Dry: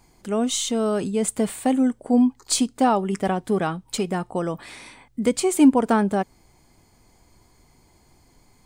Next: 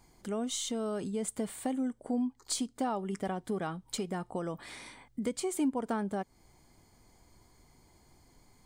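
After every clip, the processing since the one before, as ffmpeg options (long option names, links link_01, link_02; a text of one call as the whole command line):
ffmpeg -i in.wav -af "bandreject=frequency=2600:width=12,acompressor=threshold=-31dB:ratio=2,volume=-5dB" out.wav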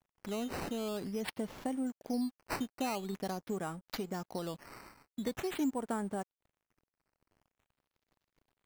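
ffmpeg -i in.wav -af "acrusher=samples=9:mix=1:aa=0.000001:lfo=1:lforange=9:lforate=0.46,aeval=exprs='sgn(val(0))*max(abs(val(0))-0.00158,0)':channel_layout=same,volume=-2.5dB" out.wav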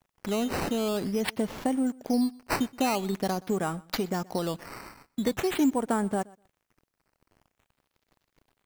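ffmpeg -i in.wav -af "aecho=1:1:124|248:0.0668|0.01,volume=9dB" out.wav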